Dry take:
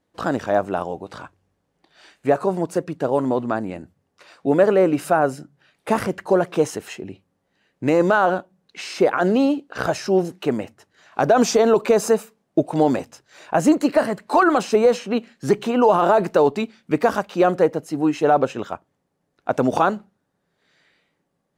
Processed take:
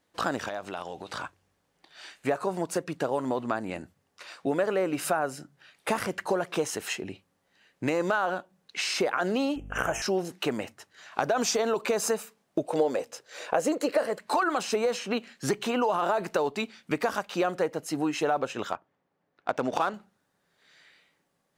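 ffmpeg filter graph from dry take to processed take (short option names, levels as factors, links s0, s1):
-filter_complex "[0:a]asettb=1/sr,asplit=3[s0][s1][s2];[s0]atrim=end=0.484[s3];[s1]atrim=start=0.48:end=1.1,asetpts=PTS-STARTPTS,afade=t=in:d=0.004:c=qsin,afade=t=out:st=0.616:d=0.004:c=qsin,equalizer=f=3800:t=o:w=1.5:g=9,acompressor=threshold=0.0251:ratio=4:attack=3.2:release=140:knee=1:detection=peak[s4];[s2]atrim=start=1.096[s5];[s3][s4]acrossfade=d=0.004:c1=hsin:c2=qsin[s6];[s6][s5]acrossfade=d=0.004:c1=qsin:c2=hsin,asettb=1/sr,asplit=3[s7][s8][s9];[s7]atrim=end=9.564[s10];[s8]atrim=start=9.56:end=10.02,asetpts=PTS-STARTPTS,afade=t=in:d=0.004:c=qsin,afade=t=out:st=0.456:d=0.004:c=qsin,bandreject=f=114:t=h:w=4,bandreject=f=228:t=h:w=4,bandreject=f=342:t=h:w=4,bandreject=f=456:t=h:w=4,bandreject=f=570:t=h:w=4,bandreject=f=684:t=h:w=4,bandreject=f=798:t=h:w=4,bandreject=f=912:t=h:w=4,bandreject=f=1026:t=h:w=4,bandreject=f=1140:t=h:w=4,bandreject=f=1254:t=h:w=4,bandreject=f=1368:t=h:w=4,bandreject=f=1482:t=h:w=4,bandreject=f=1596:t=h:w=4,bandreject=f=1710:t=h:w=4,bandreject=f=1824:t=h:w=4,bandreject=f=1938:t=h:w=4,bandreject=f=2052:t=h:w=4,bandreject=f=2166:t=h:w=4,bandreject=f=2280:t=h:w=4,bandreject=f=2394:t=h:w=4,bandreject=f=2508:t=h:w=4,bandreject=f=2622:t=h:w=4,bandreject=f=2736:t=h:w=4,bandreject=f=2850:t=h:w=4,bandreject=f=2964:t=h:w=4,bandreject=f=3078:t=h:w=4,bandreject=f=3192:t=h:w=4,bandreject=f=3306:t=h:w=4,bandreject=f=3420:t=h:w=4,bandreject=f=3534:t=h:w=4,bandreject=f=3648:t=h:w=4,bandreject=f=3762:t=h:w=4,aeval=exprs='val(0)+0.0178*(sin(2*PI*50*n/s)+sin(2*PI*2*50*n/s)/2+sin(2*PI*3*50*n/s)/3+sin(2*PI*4*50*n/s)/4+sin(2*PI*5*50*n/s)/5)':c=same,asuperstop=centerf=4300:order=8:qfactor=1.7[s11];[s9]atrim=start=10.016[s12];[s10][s11]acrossfade=d=0.004:c1=hsin:c2=qsin[s13];[s13][s12]acrossfade=d=0.004:c1=qsin:c2=hsin,asettb=1/sr,asplit=3[s14][s15][s16];[s14]atrim=end=12.684[s17];[s15]atrim=start=12.68:end=14.19,asetpts=PTS-STARTPTS,afade=t=in:d=0.004:c=qsin,afade=t=out:st=1.506:d=0.004:c=qsin,highpass=f=190:p=1,equalizer=f=490:t=o:w=0.56:g=14,bandreject=f=950:w=25[s18];[s16]atrim=start=14.186[s19];[s17][s18]acrossfade=d=0.004:c1=hsin:c2=qsin[s20];[s20][s19]acrossfade=d=0.004:c1=qsin:c2=hsin,asettb=1/sr,asplit=3[s21][s22][s23];[s21]atrim=end=18.724[s24];[s22]atrim=start=18.72:end=19.94,asetpts=PTS-STARTPTS,afade=t=in:d=0.004:c=qsin,afade=t=out:st=1.216:d=0.004:c=qsin,highpass=f=130:p=1,adynamicsmooth=sensitivity=5.5:basefreq=2800[s25];[s23]atrim=start=19.936[s26];[s24][s25]acrossfade=d=0.004:c1=hsin:c2=qsin[s27];[s27][s26]acrossfade=d=0.004:c1=qsin:c2=hsin,tiltshelf=f=790:g=-5,acompressor=threshold=0.0501:ratio=3"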